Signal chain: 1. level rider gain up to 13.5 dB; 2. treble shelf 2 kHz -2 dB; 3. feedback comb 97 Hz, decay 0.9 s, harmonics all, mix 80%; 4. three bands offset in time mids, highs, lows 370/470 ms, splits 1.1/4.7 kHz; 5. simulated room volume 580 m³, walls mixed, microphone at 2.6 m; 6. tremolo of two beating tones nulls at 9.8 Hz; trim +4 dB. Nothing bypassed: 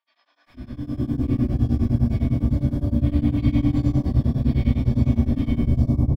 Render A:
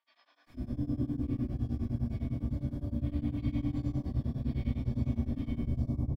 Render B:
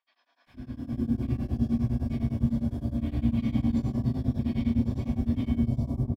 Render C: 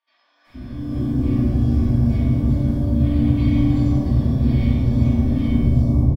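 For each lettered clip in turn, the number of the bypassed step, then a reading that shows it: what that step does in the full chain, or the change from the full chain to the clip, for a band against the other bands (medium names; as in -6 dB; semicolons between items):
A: 1, momentary loudness spread change -2 LU; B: 5, loudness change -7.0 LU; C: 6, crest factor change -1.5 dB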